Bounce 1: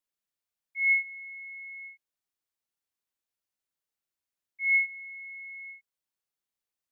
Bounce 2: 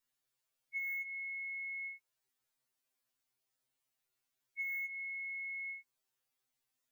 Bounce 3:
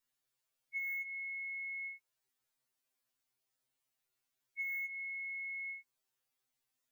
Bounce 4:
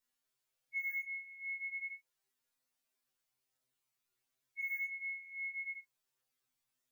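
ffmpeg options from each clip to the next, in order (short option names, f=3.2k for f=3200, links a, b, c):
-af "asoftclip=type=hard:threshold=-32.5dB,acompressor=threshold=-41dB:ratio=6,afftfilt=real='re*2.45*eq(mod(b,6),0)':imag='im*2.45*eq(mod(b,6),0)':win_size=2048:overlap=0.75,volume=6dB"
-af anull
-af "flanger=delay=19.5:depth=4.6:speed=0.38,volume=3dB"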